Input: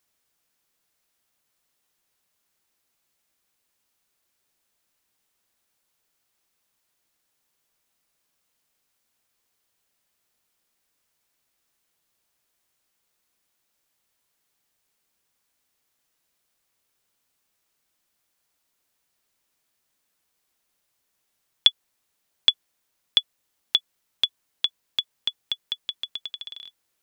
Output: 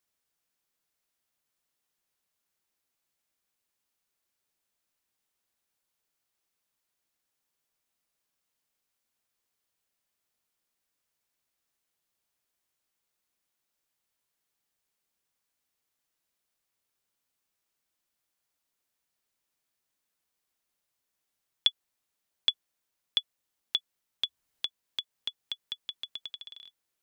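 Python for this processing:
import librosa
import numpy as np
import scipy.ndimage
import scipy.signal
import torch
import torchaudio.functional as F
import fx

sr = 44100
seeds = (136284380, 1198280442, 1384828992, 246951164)

y = fx.band_squash(x, sr, depth_pct=40, at=(24.24, 26.36))
y = F.gain(torch.from_numpy(y), -8.0).numpy()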